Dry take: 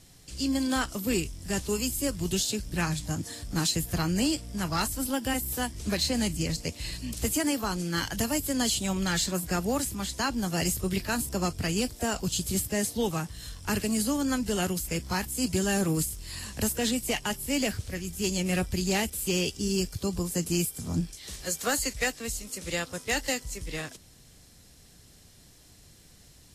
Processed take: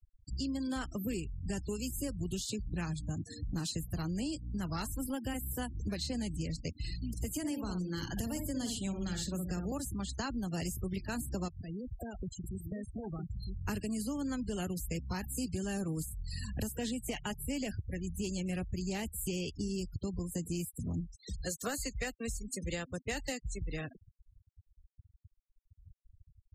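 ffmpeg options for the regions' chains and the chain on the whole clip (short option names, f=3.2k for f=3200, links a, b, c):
-filter_complex "[0:a]asettb=1/sr,asplit=3[a][b][c];[a]atrim=end=7.304[d];[b]atrim=start=7.3:end=9.72,asetpts=PTS-STARTPTS,afade=t=in:d=0.004:c=qsin,afade=t=out:st=2.416:d=0.004:c=qsin,acrossover=split=400|3000[e][f][g];[f]acompressor=threshold=-33dB:ratio=4:attack=3.2:release=140:knee=2.83:detection=peak[h];[e][h][g]amix=inputs=3:normalize=0,asplit=2[i][j];[j]adelay=61,lowpass=f=1.7k:p=1,volume=-4.5dB,asplit=2[k][l];[l]adelay=61,lowpass=f=1.7k:p=1,volume=0.34,asplit=2[m][n];[n]adelay=61,lowpass=f=1.7k:p=1,volume=0.34,asplit=2[o][p];[p]adelay=61,lowpass=f=1.7k:p=1,volume=0.34[q];[i][k][m][o][q]amix=inputs=5:normalize=0,atrim=end_sample=106722[r];[c]atrim=start=9.716[s];[d][r]acrossfade=d=0.004:c1=hsin:c2=qsin[t];[t][s]acrossfade=d=0.004:c1=qsin:c2=hsin,asettb=1/sr,asplit=3[u][v][w];[u]atrim=end=11.484[x];[v]atrim=start=11.48:end=13.63,asetpts=PTS-STARTPTS,afade=t=in:d=0.004:c=qsin,afade=t=out:st=2.146:d=0.004:c=qsin,acompressor=threshold=-39dB:ratio=12:attack=3.2:release=140:knee=1:detection=peak,aecho=1:1:960:0.531,atrim=end_sample=94815[y];[w]atrim=start=13.626[z];[x][y]acrossfade=d=0.004:c1=hsin:c2=qsin[aa];[aa][z]acrossfade=d=0.004:c1=qsin:c2=hsin,afftfilt=real='re*gte(hypot(re,im),0.0178)':imag='im*gte(hypot(re,im),0.0178)':win_size=1024:overlap=0.75,lowshelf=f=330:g=7,acompressor=threshold=-35dB:ratio=5"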